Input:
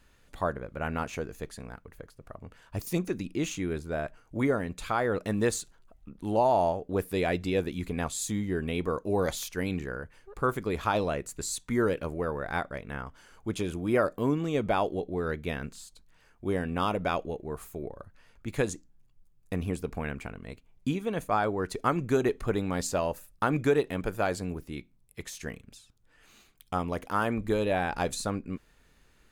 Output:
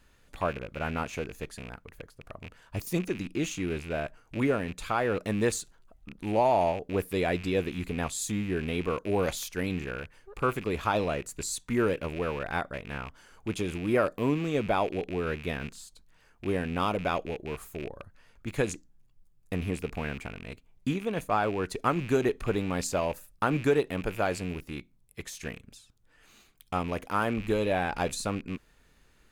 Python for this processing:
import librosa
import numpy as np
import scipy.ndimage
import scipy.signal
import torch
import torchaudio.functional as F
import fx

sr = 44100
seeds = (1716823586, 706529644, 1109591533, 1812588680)

y = fx.rattle_buzz(x, sr, strikes_db=-44.0, level_db=-32.0)